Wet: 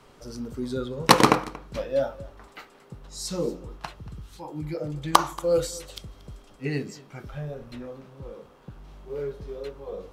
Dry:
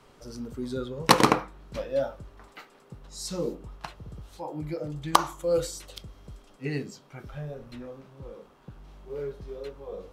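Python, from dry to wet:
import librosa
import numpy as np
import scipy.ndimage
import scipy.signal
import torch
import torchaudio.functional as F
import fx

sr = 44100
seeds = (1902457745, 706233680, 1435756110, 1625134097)

y = fx.peak_eq(x, sr, hz=620.0, db=-10.0, octaves=0.91, at=(4.0, 4.75))
y = y + 10.0 ** (-21.0 / 20.0) * np.pad(y, (int(232 * sr / 1000.0), 0))[:len(y)]
y = y * librosa.db_to_amplitude(2.5)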